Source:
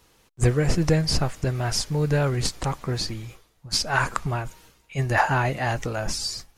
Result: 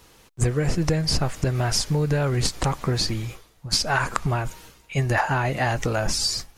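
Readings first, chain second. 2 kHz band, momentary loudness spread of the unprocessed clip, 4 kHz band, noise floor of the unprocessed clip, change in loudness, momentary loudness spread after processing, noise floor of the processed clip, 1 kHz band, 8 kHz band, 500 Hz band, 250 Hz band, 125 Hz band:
0.0 dB, 9 LU, +2.5 dB, −61 dBFS, +1.0 dB, 5 LU, −55 dBFS, 0.0 dB, +2.5 dB, 0.0 dB, +0.5 dB, +1.0 dB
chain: downward compressor 6 to 1, threshold −25 dBFS, peak gain reduction 10.5 dB
level +6.5 dB

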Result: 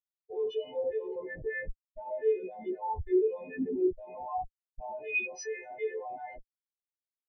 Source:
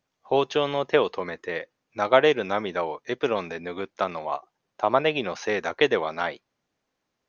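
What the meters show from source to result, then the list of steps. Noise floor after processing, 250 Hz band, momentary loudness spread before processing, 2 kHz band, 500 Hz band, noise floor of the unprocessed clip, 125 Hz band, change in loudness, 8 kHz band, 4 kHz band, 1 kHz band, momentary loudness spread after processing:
below −85 dBFS, −4.0 dB, 12 LU, −9.5 dB, −8.0 dB, −80 dBFS, −10.5 dB, −8.5 dB, can't be measured, below −20 dB, −11.5 dB, 14 LU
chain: every partial snapped to a pitch grid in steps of 3 semitones
parametric band 71 Hz −12.5 dB 0.81 octaves
brickwall limiter −13.5 dBFS, peak gain reduction 10 dB
on a send: ambience of single reflections 41 ms −16.5 dB, 76 ms −9.5 dB
on the sum: comparator with hysteresis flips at −35 dBFS
Butterworth band-reject 1,300 Hz, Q 3.1
every bin expanded away from the loudest bin 4 to 1

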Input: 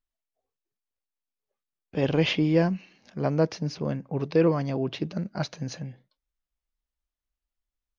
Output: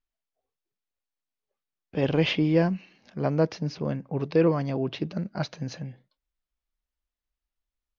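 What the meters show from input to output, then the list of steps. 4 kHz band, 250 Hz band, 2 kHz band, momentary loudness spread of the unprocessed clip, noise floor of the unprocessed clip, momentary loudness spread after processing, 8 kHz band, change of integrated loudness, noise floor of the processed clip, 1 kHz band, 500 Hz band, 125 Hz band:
−0.5 dB, 0.0 dB, 0.0 dB, 13 LU, below −85 dBFS, 13 LU, can't be measured, 0.0 dB, below −85 dBFS, 0.0 dB, 0.0 dB, 0.0 dB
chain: low-pass filter 5,500 Hz 12 dB per octave

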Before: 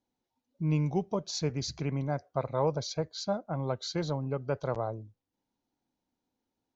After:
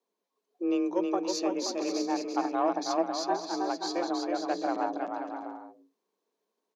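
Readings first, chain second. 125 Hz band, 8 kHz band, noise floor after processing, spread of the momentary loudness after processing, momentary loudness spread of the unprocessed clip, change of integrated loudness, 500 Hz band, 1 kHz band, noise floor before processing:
−27.5 dB, can't be measured, −85 dBFS, 7 LU, 5 LU, +2.0 dB, +2.0 dB, +7.5 dB, below −85 dBFS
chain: harmonic generator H 4 −25 dB, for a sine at −16 dBFS
bouncing-ball delay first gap 320 ms, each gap 0.65×, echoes 5
frequency shifter +170 Hz

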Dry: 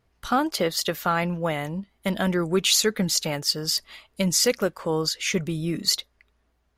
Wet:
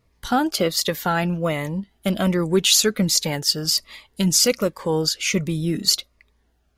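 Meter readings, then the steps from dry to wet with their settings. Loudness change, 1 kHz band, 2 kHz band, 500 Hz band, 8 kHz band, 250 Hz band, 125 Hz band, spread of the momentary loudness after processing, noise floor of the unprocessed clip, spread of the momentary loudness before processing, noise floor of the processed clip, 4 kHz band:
+3.5 dB, +1.5 dB, +1.5 dB, +2.5 dB, +4.5 dB, +4.0 dB, +4.5 dB, 8 LU, −69 dBFS, 8 LU, −65 dBFS, +4.0 dB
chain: phaser whose notches keep moving one way falling 1.3 Hz
level +4.5 dB

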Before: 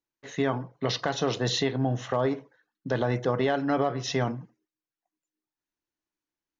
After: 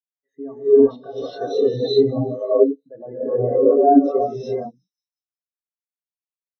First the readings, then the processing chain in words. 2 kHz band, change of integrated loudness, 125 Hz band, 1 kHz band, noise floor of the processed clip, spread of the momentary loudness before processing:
below −10 dB, +10.0 dB, −1.0 dB, +8.0 dB, below −85 dBFS, 6 LU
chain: high-pass filter 240 Hz 6 dB per octave
in parallel at −8.5 dB: sine wavefolder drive 8 dB, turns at −14 dBFS
on the sum: notch filter 4,600 Hz, Q 8.9
gate on every frequency bin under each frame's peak −15 dB strong
delay with a high-pass on its return 182 ms, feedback 68%, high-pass 4,600 Hz, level −9 dB
reverb whose tail is shaped and stops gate 440 ms rising, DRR −7 dB
every bin expanded away from the loudest bin 2.5 to 1

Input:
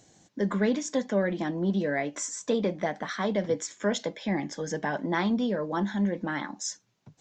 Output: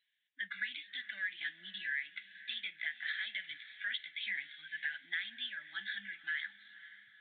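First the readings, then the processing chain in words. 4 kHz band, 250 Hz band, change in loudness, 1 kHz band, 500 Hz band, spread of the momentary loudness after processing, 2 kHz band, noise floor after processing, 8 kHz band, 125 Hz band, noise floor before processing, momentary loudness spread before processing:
−0.5 dB, below −35 dB, −10.5 dB, −27.5 dB, below −40 dB, 8 LU, −0.5 dB, −76 dBFS, below −40 dB, below −35 dB, −71 dBFS, 6 LU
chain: elliptic high-pass filter 1,700 Hz, stop band 40 dB
noise reduction from a noise print of the clip's start 17 dB
downward compressor 6 to 1, threshold −40 dBFS, peak gain reduction 10.5 dB
feedback delay with all-pass diffusion 520 ms, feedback 49%, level −16 dB
downsampling to 8,000 Hz
level +6 dB

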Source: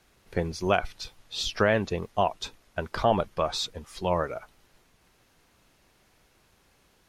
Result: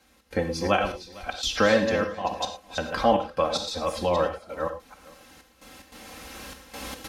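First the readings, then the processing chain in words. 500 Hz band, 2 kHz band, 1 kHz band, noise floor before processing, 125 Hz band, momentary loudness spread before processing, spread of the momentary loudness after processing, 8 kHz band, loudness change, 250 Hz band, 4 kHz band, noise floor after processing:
+3.5 dB, +3.5 dB, +2.5 dB, −65 dBFS, −1.5 dB, 12 LU, 19 LU, +4.0 dB, +2.5 dB, +3.5 dB, +2.5 dB, −60 dBFS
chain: delay that plays each chunk backwards 260 ms, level −7 dB
camcorder AGC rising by 9.3 dB per second
high-pass filter 53 Hz
comb filter 3.8 ms, depth 76%
gate pattern "xx.xxxxxx.." 147 BPM −12 dB
on a send: single-tap delay 455 ms −21.5 dB
on the sum: reverb whose tail is shaped and stops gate 130 ms flat, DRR 6.5 dB

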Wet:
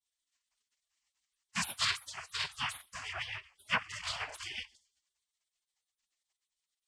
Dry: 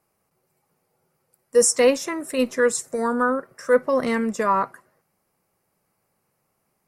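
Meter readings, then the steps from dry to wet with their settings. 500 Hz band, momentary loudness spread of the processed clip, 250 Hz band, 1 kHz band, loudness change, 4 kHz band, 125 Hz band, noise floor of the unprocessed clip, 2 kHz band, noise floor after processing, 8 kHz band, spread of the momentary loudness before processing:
−35.0 dB, 10 LU, −27.5 dB, −16.5 dB, −15.0 dB, −0.5 dB, can't be measured, −73 dBFS, −8.0 dB, below −85 dBFS, −17.5 dB, 8 LU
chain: four-comb reverb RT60 0.44 s, combs from 30 ms, DRR 15.5 dB
cochlear-implant simulation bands 8
rotating-speaker cabinet horn 8 Hz
gate on every frequency bin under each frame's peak −25 dB weak
level +6 dB

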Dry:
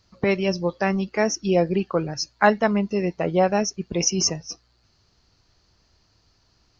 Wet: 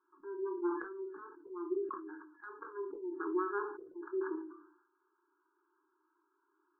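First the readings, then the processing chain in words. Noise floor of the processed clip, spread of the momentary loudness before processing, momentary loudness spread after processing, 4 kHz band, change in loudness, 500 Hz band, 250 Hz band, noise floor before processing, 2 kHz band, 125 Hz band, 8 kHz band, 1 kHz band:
−79 dBFS, 6 LU, 14 LU, below −40 dB, −17.0 dB, −16.0 dB, −16.5 dB, −64 dBFS, −19.5 dB, below −40 dB, can't be measured, −17.5 dB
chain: phase distortion by the signal itself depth 0.47 ms
brick-wall band-pass 290–1,700 Hz
elliptic band-stop filter 390–910 Hz, stop band 40 dB
gate on every frequency bin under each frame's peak −25 dB strong
downward compressor 10 to 1, threshold −28 dBFS, peak gain reduction 12.5 dB
volume swells 251 ms
rectangular room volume 160 cubic metres, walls furnished, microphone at 0.94 metres
level that may fall only so fast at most 75 dB per second
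level −5 dB

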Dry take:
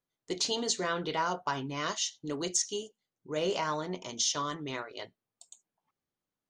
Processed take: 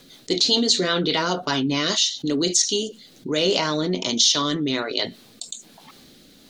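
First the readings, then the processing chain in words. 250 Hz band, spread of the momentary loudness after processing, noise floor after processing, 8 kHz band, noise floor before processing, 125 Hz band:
+14.5 dB, 17 LU, −51 dBFS, +9.5 dB, below −85 dBFS, +11.5 dB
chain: graphic EQ with 15 bands 100 Hz −6 dB, 250 Hz +7 dB, 1,000 Hz −4 dB, 4,000 Hz +12 dB
rotating-speaker cabinet horn 5 Hz, later 1.2 Hz, at 0:01.78
envelope flattener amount 50%
level +6 dB

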